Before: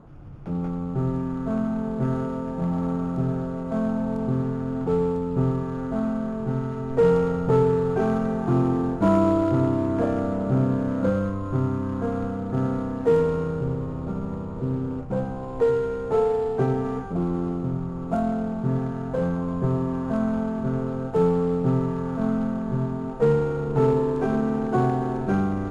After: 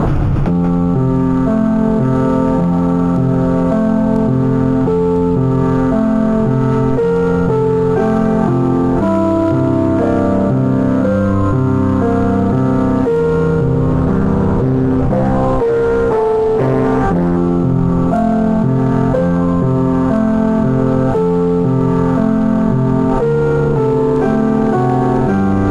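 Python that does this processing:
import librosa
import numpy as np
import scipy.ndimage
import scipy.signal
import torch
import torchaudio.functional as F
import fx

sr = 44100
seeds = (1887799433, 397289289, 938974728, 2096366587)

y = fx.doppler_dist(x, sr, depth_ms=0.73, at=(13.93, 17.37))
y = fx.env_flatten(y, sr, amount_pct=100)
y = y * 10.0 ** (2.5 / 20.0)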